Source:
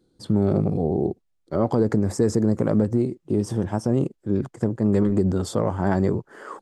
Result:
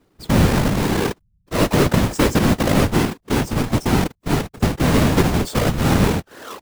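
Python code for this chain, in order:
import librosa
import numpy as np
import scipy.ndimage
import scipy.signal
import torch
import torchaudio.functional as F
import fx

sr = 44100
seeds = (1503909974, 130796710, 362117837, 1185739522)

y = fx.halfwave_hold(x, sr)
y = fx.whisperise(y, sr, seeds[0])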